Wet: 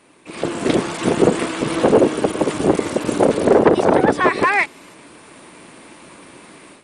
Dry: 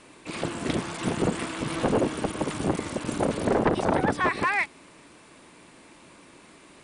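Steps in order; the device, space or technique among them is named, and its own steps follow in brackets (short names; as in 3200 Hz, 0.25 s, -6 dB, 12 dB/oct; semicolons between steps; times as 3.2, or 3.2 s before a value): dynamic EQ 430 Hz, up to +7 dB, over -39 dBFS, Q 1.2; video call (HPF 130 Hz 6 dB/oct; AGC gain up to 11.5 dB; Opus 32 kbps 48000 Hz)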